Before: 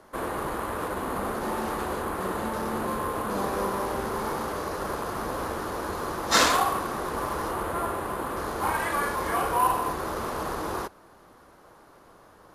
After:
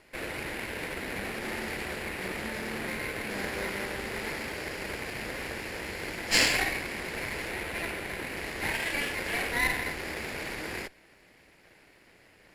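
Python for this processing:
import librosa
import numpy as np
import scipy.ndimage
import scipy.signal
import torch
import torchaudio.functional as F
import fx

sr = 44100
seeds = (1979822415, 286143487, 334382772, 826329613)

y = fx.lower_of_two(x, sr, delay_ms=0.4)
y = fx.graphic_eq(y, sr, hz=(2000, 4000, 8000), db=(7, 6, 3))
y = y * 10.0 ** (-6.0 / 20.0)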